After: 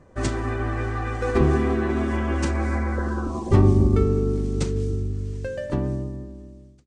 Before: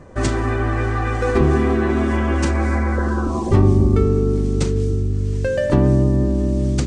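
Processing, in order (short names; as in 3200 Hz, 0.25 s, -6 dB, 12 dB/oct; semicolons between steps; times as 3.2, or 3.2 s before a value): ending faded out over 1.85 s; upward expander 1.5:1, over -27 dBFS; gain -1.5 dB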